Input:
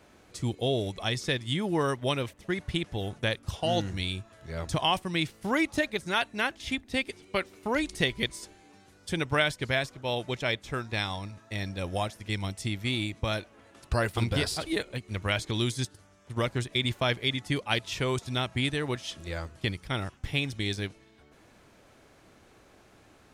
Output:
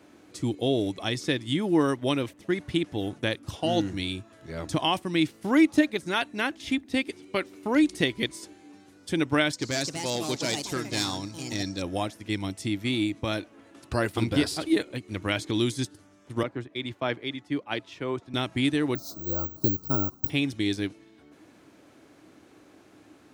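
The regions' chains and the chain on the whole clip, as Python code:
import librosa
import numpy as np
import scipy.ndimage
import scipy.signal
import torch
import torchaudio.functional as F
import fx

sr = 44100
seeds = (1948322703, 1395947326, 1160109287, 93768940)

y = fx.chain(x, sr, fx.overload_stage(gain_db=26.5),
    fx.band_shelf(hz=5600.0, db=12.0, octaves=1.2),
    fx.echo_pitch(ms=280, semitones=4, count=2, db_per_echo=-6.0), at=(9.53, 11.82))
y = fx.chain(y, sr, fx.lowpass(hz=1500.0, slope=6),
    fx.low_shelf(hz=330.0, db=-8.0),
    fx.band_widen(depth_pct=70), at=(16.43, 18.34))
y = fx.chain(y, sr, fx.cheby1_bandstop(low_hz=1400.0, high_hz=4100.0, order=4),
    fx.low_shelf(hz=210.0, db=6.5),
    fx.resample_bad(factor=2, down='none', up='zero_stuff'), at=(18.95, 20.3))
y = scipy.signal.sosfilt(scipy.signal.butter(2, 96.0, 'highpass', fs=sr, output='sos'), y)
y = fx.peak_eq(y, sr, hz=300.0, db=11.5, octaves=0.46)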